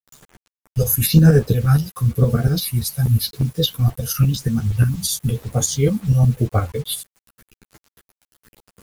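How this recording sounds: phasing stages 4, 0.94 Hz, lowest notch 310–3500 Hz; tremolo saw up 8.5 Hz, depth 75%; a quantiser's noise floor 8-bit, dither none; a shimmering, thickened sound

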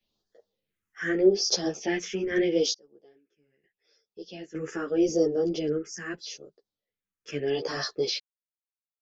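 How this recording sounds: phasing stages 4, 0.8 Hz, lowest notch 660–2300 Hz; random-step tremolo 1.1 Hz, depth 100%; a shimmering, thickened sound

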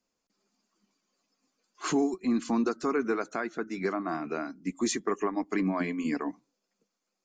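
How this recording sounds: noise floor -84 dBFS; spectral tilt -5.0 dB/octave

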